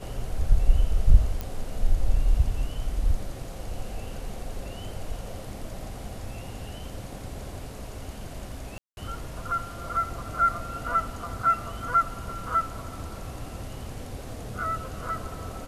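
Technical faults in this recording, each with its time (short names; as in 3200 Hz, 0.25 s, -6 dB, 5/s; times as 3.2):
1.41 pop -17 dBFS
8.78–8.97 gap 0.191 s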